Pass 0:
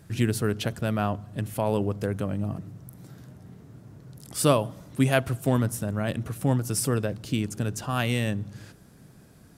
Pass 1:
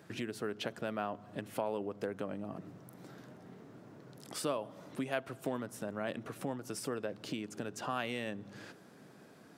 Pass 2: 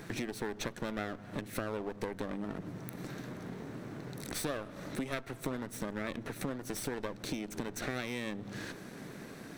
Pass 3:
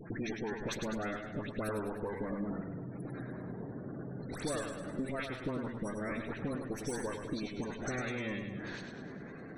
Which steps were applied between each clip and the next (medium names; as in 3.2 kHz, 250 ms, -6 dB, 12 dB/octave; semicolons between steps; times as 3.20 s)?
compression 6:1, threshold -32 dBFS, peak gain reduction 15.5 dB; high-pass 290 Hz 12 dB/octave; peaking EQ 12 kHz -12.5 dB 1.7 oct; trim +2 dB
comb filter that takes the minimum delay 0.51 ms; compression 2.5:1, threshold -50 dBFS, peak gain reduction 13 dB; trim +11.5 dB
phase dispersion highs, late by 119 ms, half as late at 1.8 kHz; spectral gate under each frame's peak -20 dB strong; modulated delay 102 ms, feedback 55%, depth 63 cents, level -6.5 dB